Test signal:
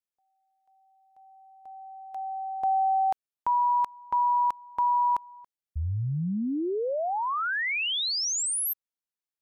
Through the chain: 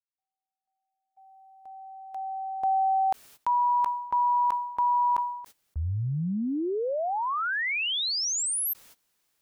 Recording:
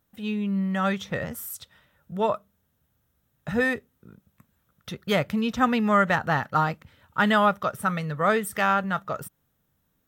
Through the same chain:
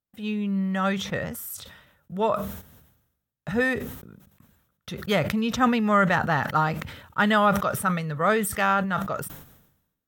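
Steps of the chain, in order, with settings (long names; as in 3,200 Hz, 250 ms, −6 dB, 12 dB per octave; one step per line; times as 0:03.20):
noise gate −57 dBFS, range −20 dB
level that may fall only so fast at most 65 dB per second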